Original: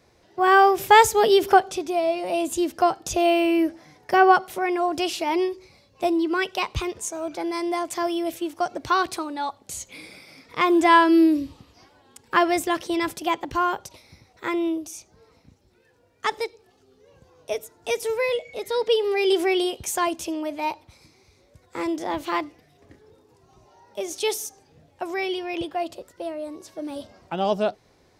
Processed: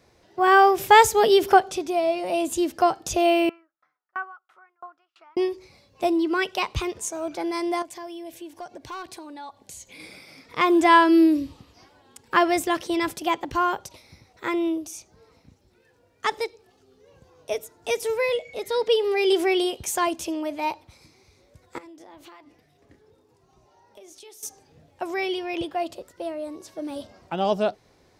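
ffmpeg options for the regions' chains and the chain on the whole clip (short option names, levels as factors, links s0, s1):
-filter_complex "[0:a]asettb=1/sr,asplit=3[s0][s1][s2];[s0]atrim=end=3.494[s3];[s1]atrim=start=3.49:end=5.37,asetpts=PTS-STARTPTS,afade=t=in:d=0.004:c=qsin,afade=t=out:st=1.876:d=0.004:c=qsin,lowpass=f=1300:t=q:w=8.9,aderivative,aeval=exprs='val(0)*pow(10,-39*if(lt(mod(3*n/s,1),2*abs(3)/1000),1-mod(3*n/s,1)/(2*abs(3)/1000),(mod(3*n/s,1)-2*abs(3)/1000)/(1-2*abs(3)/1000))/20)':c=same[s4];[s2]atrim=start=5.366[s5];[s3][s4]acrossfade=d=0.004:c1=hsin:c2=qsin[s6];[s6][s5]acrossfade=d=0.004:c1=qsin:c2=hsin,asettb=1/sr,asplit=3[s7][s8][s9];[s7]atrim=end=7.824[s10];[s8]atrim=start=7.82:end=10,asetpts=PTS-STARTPTS,afade=t=in:d=0.004:c=qsin,afade=t=out:st=2.176:d=0.004:c=qsin,asoftclip=type=hard:threshold=0.168,acompressor=threshold=0.00631:ratio=2:attack=3.2:release=140:knee=1:detection=peak,asuperstop=centerf=1300:order=12:qfactor=7.4[s11];[s9]atrim=start=9.996[s12];[s10][s11]acrossfade=d=0.004:c1=hsin:c2=qsin[s13];[s13][s12]acrossfade=d=0.004:c1=qsin:c2=hsin,asettb=1/sr,asplit=3[s14][s15][s16];[s14]atrim=end=21.784[s17];[s15]atrim=start=21.78:end=24.43,asetpts=PTS-STARTPTS,afade=t=in:d=0.004:c=qsin,afade=t=out:st=2.646:d=0.004:c=qsin,acompressor=threshold=0.0112:ratio=10:attack=3.2:release=140:knee=1:detection=peak,flanger=delay=4.3:depth=4.8:regen=-81:speed=1.7:shape=sinusoidal[s18];[s16]atrim=start=24.426[s19];[s17][s18]acrossfade=d=0.004:c1=hsin:c2=qsin[s20];[s20][s19]acrossfade=d=0.004:c1=qsin:c2=hsin"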